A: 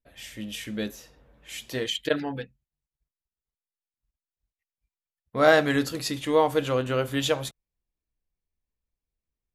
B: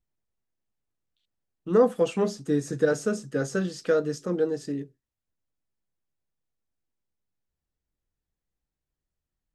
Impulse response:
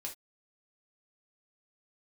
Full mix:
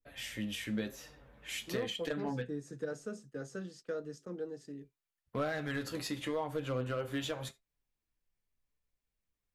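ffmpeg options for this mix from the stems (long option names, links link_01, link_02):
-filter_complex "[0:a]equalizer=frequency=1800:width_type=o:width=1.6:gain=4,acompressor=threshold=-40dB:ratio=1.5,flanger=delay=6.7:depth=3.6:regen=56:speed=0.91:shape=sinusoidal,volume=2dB,asplit=2[link_01][link_02];[link_02]volume=-9.5dB[link_03];[1:a]agate=range=-13dB:threshold=-40dB:ratio=16:detection=peak,volume=-15dB[link_04];[2:a]atrim=start_sample=2205[link_05];[link_03][link_05]afir=irnorm=-1:irlink=0[link_06];[link_01][link_04][link_06]amix=inputs=3:normalize=0,acrossover=split=170[link_07][link_08];[link_08]acompressor=threshold=-32dB:ratio=4[link_09];[link_07][link_09]amix=inputs=2:normalize=0,aeval=exprs='clip(val(0),-1,0.0398)':channel_layout=same,adynamicequalizer=threshold=0.00355:dfrequency=1700:dqfactor=0.7:tfrequency=1700:tqfactor=0.7:attack=5:release=100:ratio=0.375:range=2.5:mode=cutabove:tftype=highshelf"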